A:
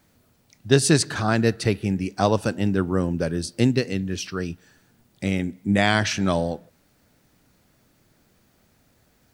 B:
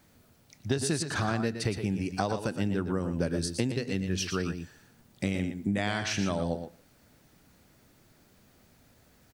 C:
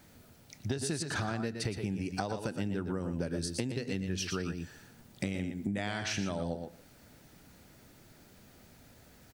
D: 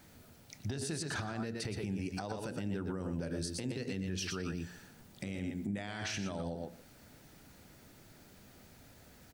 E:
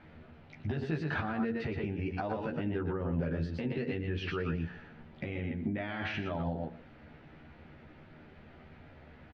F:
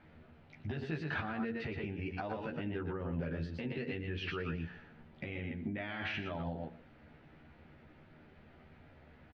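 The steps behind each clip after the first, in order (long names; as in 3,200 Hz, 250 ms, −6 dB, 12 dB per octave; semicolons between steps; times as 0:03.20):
downward compressor 12 to 1, threshold −25 dBFS, peak gain reduction 15 dB; multi-tap delay 106/118 ms −16.5/−8.5 dB
notch filter 1,100 Hz, Q 15; downward compressor 2.5 to 1, threshold −38 dBFS, peak gain reduction 10.5 dB; level +3.5 dB
hum removal 58.76 Hz, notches 11; brickwall limiter −28.5 dBFS, peak gain reduction 10 dB
low-pass filter 2,800 Hz 24 dB per octave; double-tracking delay 13 ms −3 dB; level +3.5 dB
dynamic equaliser 2,700 Hz, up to +5 dB, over −53 dBFS, Q 0.79; level −5 dB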